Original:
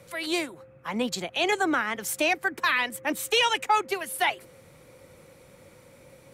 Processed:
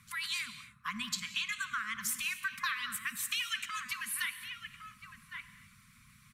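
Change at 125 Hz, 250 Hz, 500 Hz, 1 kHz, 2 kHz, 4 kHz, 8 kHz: −9.0 dB, −19.5 dB, below −40 dB, −15.0 dB, −8.0 dB, −7.5 dB, −3.5 dB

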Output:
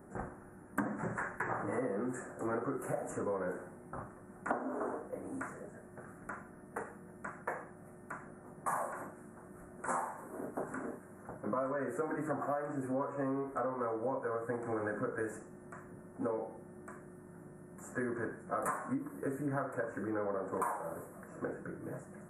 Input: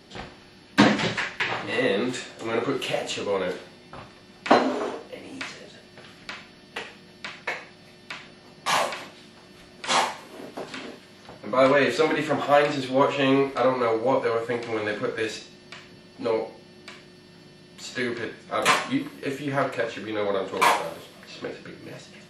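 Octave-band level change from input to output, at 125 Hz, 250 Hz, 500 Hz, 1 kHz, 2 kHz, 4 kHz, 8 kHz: −9.0 dB, −11.0 dB, −13.0 dB, −12.5 dB, −15.5 dB, below −40 dB, −14.5 dB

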